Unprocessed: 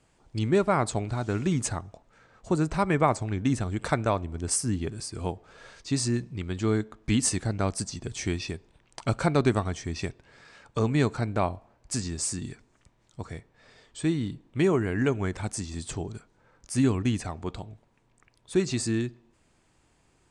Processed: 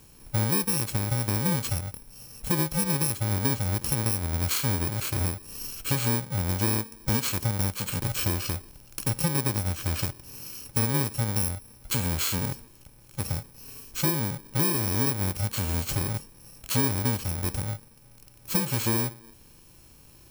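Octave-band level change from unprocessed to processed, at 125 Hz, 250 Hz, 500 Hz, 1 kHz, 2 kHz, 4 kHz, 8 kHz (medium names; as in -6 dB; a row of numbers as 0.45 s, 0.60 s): +2.0 dB, -3.0 dB, -6.5 dB, -3.5 dB, +1.0 dB, +5.0 dB, +3.0 dB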